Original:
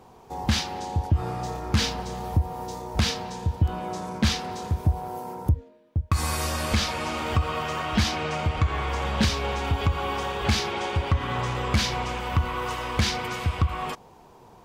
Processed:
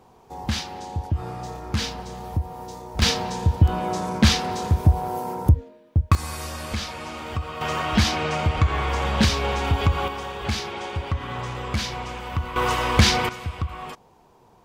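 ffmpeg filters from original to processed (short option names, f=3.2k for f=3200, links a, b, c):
-af "asetnsamples=n=441:p=0,asendcmd='3.02 volume volume 6dB;6.15 volume volume -5dB;7.61 volume volume 3.5dB;10.08 volume volume -3dB;12.56 volume volume 7.5dB;13.29 volume volume -4.5dB',volume=-2.5dB"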